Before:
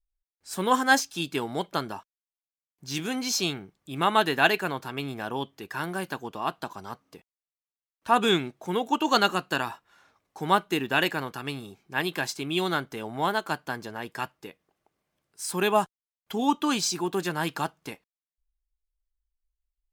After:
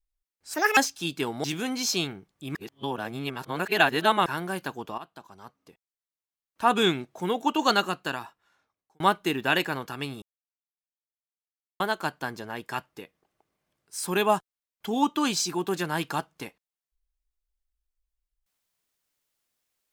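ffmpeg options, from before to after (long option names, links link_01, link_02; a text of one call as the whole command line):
ffmpeg -i in.wav -filter_complex "[0:a]asplit=10[link_01][link_02][link_03][link_04][link_05][link_06][link_07][link_08][link_09][link_10];[link_01]atrim=end=0.544[link_11];[link_02]atrim=start=0.54:end=0.92,asetpts=PTS-STARTPTS,asetrate=72765,aresample=44100,atrim=end_sample=10156,asetpts=PTS-STARTPTS[link_12];[link_03]atrim=start=0.916:end=1.592[link_13];[link_04]atrim=start=2.898:end=4.012[link_14];[link_05]atrim=start=4.008:end=5.722,asetpts=PTS-STARTPTS,areverse[link_15];[link_06]atrim=start=5.718:end=6.44,asetpts=PTS-STARTPTS,afade=type=out:start_time=0.718:duration=0.004:curve=hsin:silence=0.177828[link_16];[link_07]atrim=start=6.44:end=10.46,asetpts=PTS-STARTPTS,afade=type=in:duration=1.79:silence=0.177828,afade=type=out:start_time=2.63:duration=1.39[link_17];[link_08]atrim=start=10.46:end=11.68,asetpts=PTS-STARTPTS,afade=type=in:duration=0.004:curve=hsin,afade=type=out:start_time=1.216:duration=0.004:curve=hsin[link_18];[link_09]atrim=start=11.68:end=13.26,asetpts=PTS-STARTPTS,volume=0[link_19];[link_10]atrim=start=13.26,asetpts=PTS-STARTPTS,afade=type=in:duration=0.004:curve=hsin[link_20];[link_11][link_12]acrossfade=duration=0.004:curve1=hsin:curve2=hsin[link_21];[link_21][link_13]acrossfade=duration=0.004:curve1=hsin:curve2=hsin[link_22];[link_22][link_14]acrossfade=duration=0.004:curve1=hsin:curve2=hsin[link_23];[link_23][link_15]acrossfade=duration=0.004:curve1=hsin:curve2=hsin[link_24];[link_16][link_17][link_18][link_19][link_20]concat=n=5:v=0:a=1[link_25];[link_24][link_25]acrossfade=duration=0.004:curve1=hsin:curve2=hsin" out.wav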